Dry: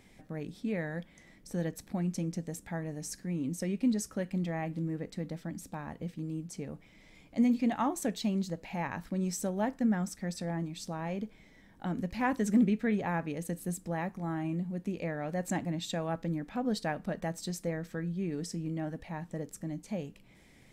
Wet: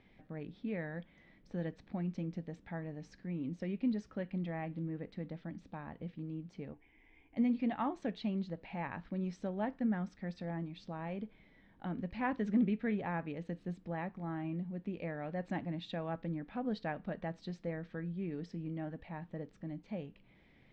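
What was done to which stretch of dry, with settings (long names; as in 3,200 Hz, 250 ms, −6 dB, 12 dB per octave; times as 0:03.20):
0:06.73–0:07.37: phaser with its sweep stopped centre 860 Hz, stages 8
whole clip: low-pass filter 3,700 Hz 24 dB per octave; level −5 dB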